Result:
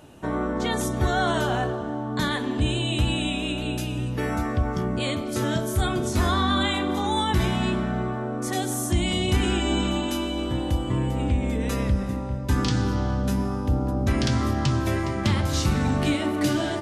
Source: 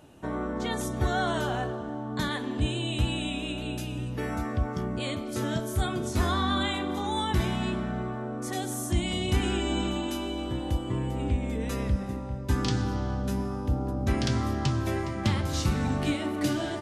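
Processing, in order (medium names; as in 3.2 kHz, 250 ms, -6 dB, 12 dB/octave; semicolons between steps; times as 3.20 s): de-hum 55.99 Hz, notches 15; in parallel at -1 dB: peak limiter -20.5 dBFS, peak gain reduction 7.5 dB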